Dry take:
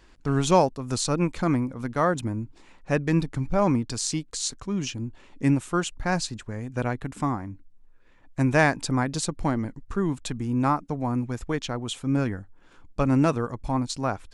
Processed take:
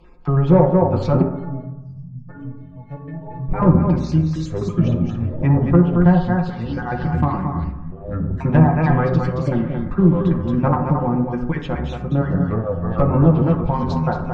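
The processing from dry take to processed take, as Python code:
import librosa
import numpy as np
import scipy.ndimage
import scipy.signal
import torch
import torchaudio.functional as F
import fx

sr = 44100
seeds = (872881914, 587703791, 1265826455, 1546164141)

y = fx.spec_dropout(x, sr, seeds[0], share_pct=31)
y = fx.spacing_loss(y, sr, db_at_10k=32)
y = y + 0.74 * np.pad(y, (int(5.6 * sr / 1000.0), 0))[:len(y)]
y = y + 10.0 ** (-6.0 / 20.0) * np.pad(y, (int(224 * sr / 1000.0), 0))[:len(y)]
y = np.clip(y, -10.0 ** (-15.5 / 20.0), 10.0 ** (-15.5 / 20.0))
y = fx.env_lowpass_down(y, sr, base_hz=750.0, full_db=-17.5)
y = fx.echo_pitch(y, sr, ms=424, semitones=-6, count=2, db_per_echo=-6.0)
y = fx.spec_erase(y, sr, start_s=1.64, length_s=0.65, low_hz=240.0, high_hz=4400.0)
y = fx.stiff_resonator(y, sr, f0_hz=130.0, decay_s=0.58, stiffness=0.03, at=(1.22, 3.49))
y = fx.rev_fdn(y, sr, rt60_s=0.98, lf_ratio=0.85, hf_ratio=0.35, size_ms=35.0, drr_db=3.0)
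y = y * 10.0 ** (6.0 / 20.0)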